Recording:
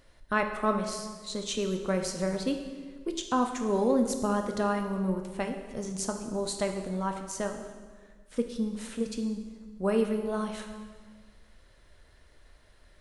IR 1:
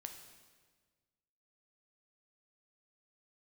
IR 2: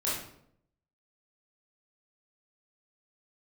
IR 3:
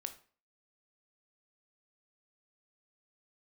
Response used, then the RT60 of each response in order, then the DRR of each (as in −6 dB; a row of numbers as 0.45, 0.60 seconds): 1; 1.5, 0.70, 0.40 seconds; 4.5, −8.0, 8.0 decibels